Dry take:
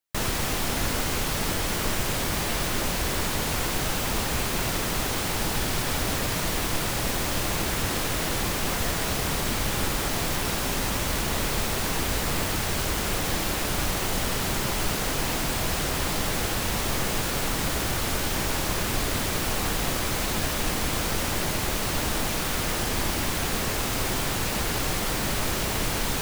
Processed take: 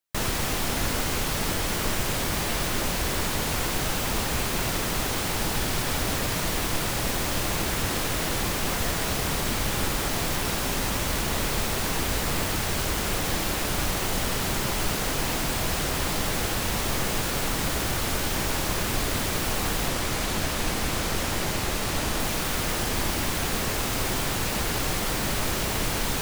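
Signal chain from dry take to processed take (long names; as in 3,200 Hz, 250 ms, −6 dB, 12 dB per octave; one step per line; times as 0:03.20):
0:19.88–0:22.20: highs frequency-modulated by the lows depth 0.29 ms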